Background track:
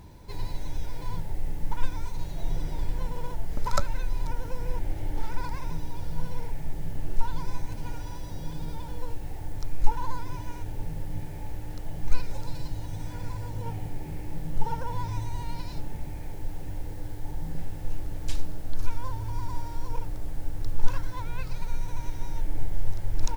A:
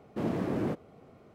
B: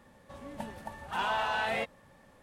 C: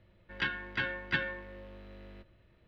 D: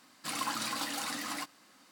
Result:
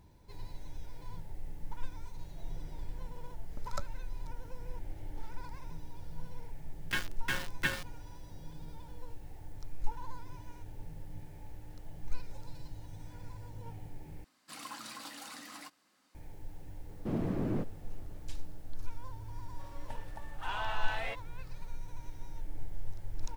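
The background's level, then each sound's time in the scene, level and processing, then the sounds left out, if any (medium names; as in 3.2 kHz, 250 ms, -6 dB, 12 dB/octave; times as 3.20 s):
background track -12 dB
6.51 s: add C -1 dB + small samples zeroed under -33 dBFS
14.24 s: replace with D -10.5 dB
16.89 s: add A -7 dB + bass shelf 200 Hz +11 dB
19.30 s: add B -6.5 dB + frequency weighting A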